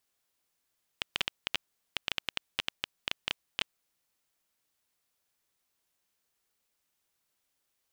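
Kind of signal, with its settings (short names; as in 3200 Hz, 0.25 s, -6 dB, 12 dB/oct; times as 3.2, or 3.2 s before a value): random clicks 8.6/s -11 dBFS 2.90 s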